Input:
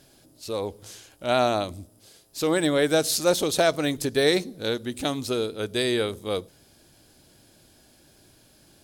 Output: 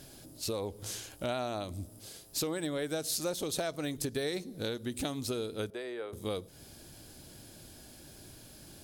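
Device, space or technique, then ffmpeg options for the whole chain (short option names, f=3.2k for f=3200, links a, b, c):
ASMR close-microphone chain: -filter_complex "[0:a]lowshelf=f=230:g=5,acompressor=threshold=-35dB:ratio=6,highshelf=f=7.3k:g=5,asettb=1/sr,asplit=3[a][b][c];[a]atrim=end=5.704[d];[b]atrim=start=5.7:end=6.13,asetpts=PTS-STARTPTS,afade=t=in:d=0.004:c=qsin,afade=t=out:st=0.426:d=0.004:c=qsin,acrossover=split=360 2100:gain=0.0708 1 0.141[e][f][g];[e][f][g]amix=inputs=3:normalize=0[h];[c]atrim=start=6.126[i];[d][h]acrossfade=d=0.004:c1=hsin:c2=qsin[j];[j][i]acrossfade=d=0.004:c1=qsin:c2=hsin,volume=2dB"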